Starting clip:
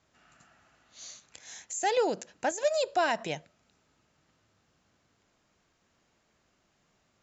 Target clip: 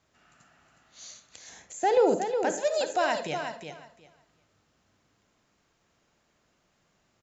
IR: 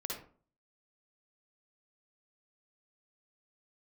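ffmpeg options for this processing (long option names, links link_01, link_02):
-filter_complex "[0:a]asettb=1/sr,asplit=3[link_01][link_02][link_03];[link_01]atrim=end=1.494[link_04];[link_02]atrim=start=1.49:end=2.16,asetpts=PTS-STARTPTS,afade=type=in:duration=0.004:curve=qsin,afade=type=out:start_time=0.666:duration=0.004:curve=qsin,tiltshelf=frequency=1400:gain=7[link_05];[link_03]atrim=start=2.156[link_06];[link_04][link_05]acrossfade=duration=0.004:curve1=hsin:curve2=qsin[link_07];[link_07][link_06]acrossfade=duration=0.004:curve1=qsin:curve2=hsin,aecho=1:1:364|728|1092:0.422|0.0717|0.0122,asplit=2[link_08][link_09];[1:a]atrim=start_sample=2205,afade=type=out:start_time=0.21:duration=0.01,atrim=end_sample=9702[link_10];[link_09][link_10]afir=irnorm=-1:irlink=0,volume=-6.5dB[link_11];[link_08][link_11]amix=inputs=2:normalize=0,volume=-2.5dB"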